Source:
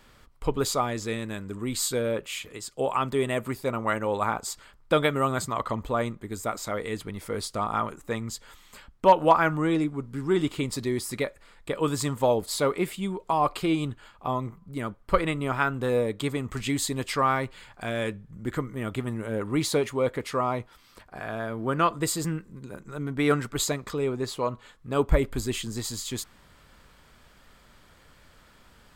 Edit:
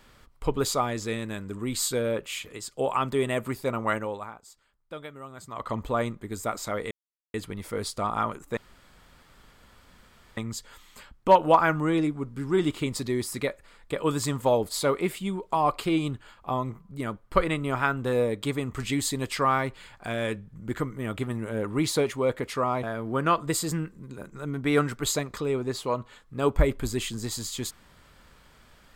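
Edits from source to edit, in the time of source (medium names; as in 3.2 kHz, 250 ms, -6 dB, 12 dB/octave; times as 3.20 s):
3.95–5.76 s: dip -17.5 dB, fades 0.46 s quadratic
6.91 s: insert silence 0.43 s
8.14 s: insert room tone 1.80 s
20.60–21.36 s: delete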